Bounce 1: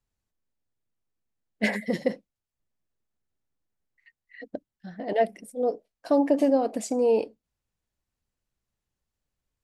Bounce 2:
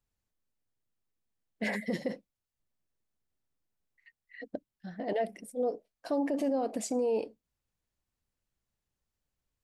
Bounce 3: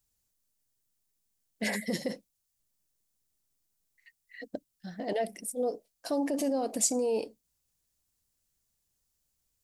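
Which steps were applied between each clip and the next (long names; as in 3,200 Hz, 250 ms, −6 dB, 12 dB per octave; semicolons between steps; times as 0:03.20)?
brickwall limiter −20.5 dBFS, peak gain reduction 10.5 dB; level −2 dB
bass and treble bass +1 dB, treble +14 dB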